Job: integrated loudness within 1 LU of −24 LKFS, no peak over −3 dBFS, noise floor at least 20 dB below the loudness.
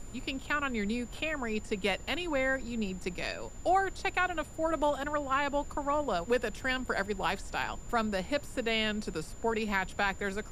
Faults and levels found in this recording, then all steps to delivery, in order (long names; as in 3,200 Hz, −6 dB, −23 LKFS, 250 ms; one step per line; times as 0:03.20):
interfering tone 7,100 Hz; level of the tone −54 dBFS; background noise floor −45 dBFS; target noise floor −53 dBFS; integrated loudness −32.5 LKFS; sample peak −15.5 dBFS; target loudness −24.0 LKFS
→ notch filter 7,100 Hz, Q 30
noise reduction from a noise print 8 dB
level +8.5 dB